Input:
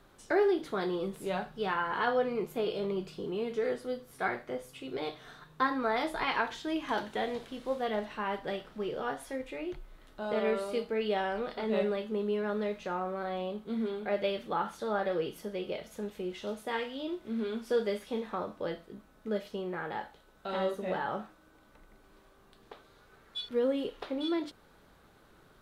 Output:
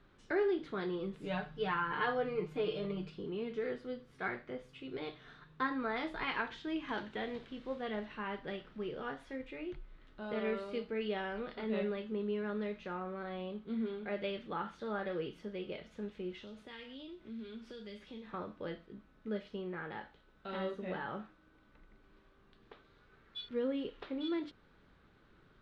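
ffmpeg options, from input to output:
-filter_complex "[0:a]asettb=1/sr,asplit=3[a][b][c];[a]atrim=end=1.234[d];[b]atrim=start=1.23:end=3.1,asetpts=PTS-STARTPTS,afade=t=in:d=0.004:c=qsin,afade=t=out:st=1.866:d=0.004:c=qsin,aecho=1:1:6.6:0.88,atrim=end_sample=82467[e];[c]atrim=start=3.096[f];[d][e]acrossfade=d=0.004:c1=hsin:c2=qsin[g];[g][f]acrossfade=d=0.004:c1=qsin:c2=hsin,asettb=1/sr,asplit=3[h][i][j];[h]atrim=end=16.404[k];[i]atrim=start=16.4:end=18.34,asetpts=PTS-STARTPTS,afade=t=in:d=0.004:c=qsin,afade=t=out:st=1.936:d=0.004:c=qsin,acrossover=split=150|3000[l][m][n];[m]acompressor=threshold=-43dB:ratio=5:attack=3.2:release=140:knee=2.83:detection=peak[o];[l][o][n]amix=inputs=3:normalize=0[p];[j]atrim=start=18.336[q];[k][p]acrossfade=d=0.004:c1=hsin:c2=qsin[r];[r][q]acrossfade=d=0.004:c1=qsin:c2=hsin,lowpass=3.2k,equalizer=f=720:t=o:w=1.4:g=-8,volume=-2dB"

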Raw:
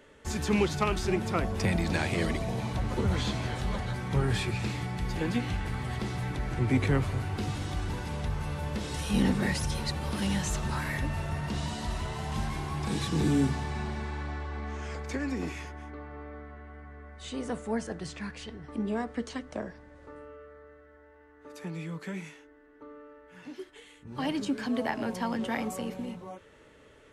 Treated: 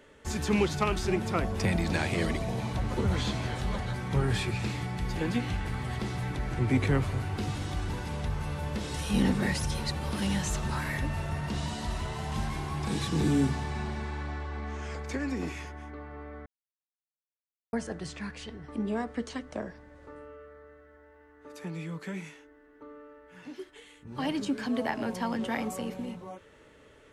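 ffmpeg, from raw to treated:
-filter_complex "[0:a]asplit=3[a][b][c];[a]atrim=end=16.46,asetpts=PTS-STARTPTS,afade=t=out:st=16.456:d=0.004:c=hsin[d];[b]atrim=start=16.46:end=17.73,asetpts=PTS-STARTPTS,volume=0[e];[c]atrim=start=17.73,asetpts=PTS-STARTPTS,afade=t=in:d=0.004:c=hsin[f];[d][e][f]concat=n=3:v=0:a=1"

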